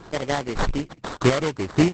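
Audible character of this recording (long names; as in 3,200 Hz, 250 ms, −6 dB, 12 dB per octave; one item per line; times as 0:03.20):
chopped level 1.7 Hz, depth 65%, duty 20%
aliases and images of a low sample rate 2,600 Hz, jitter 20%
Opus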